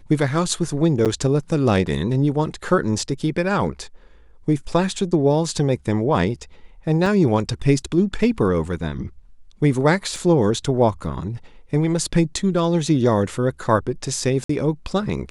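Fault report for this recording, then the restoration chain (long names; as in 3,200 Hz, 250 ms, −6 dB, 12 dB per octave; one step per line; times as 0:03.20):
0:01.05–0:01.06: drop-out 7.5 ms
0:07.06: drop-out 3.1 ms
0:10.16: drop-out 2.1 ms
0:14.44–0:14.49: drop-out 54 ms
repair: repair the gap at 0:01.05, 7.5 ms
repair the gap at 0:07.06, 3.1 ms
repair the gap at 0:10.16, 2.1 ms
repair the gap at 0:14.44, 54 ms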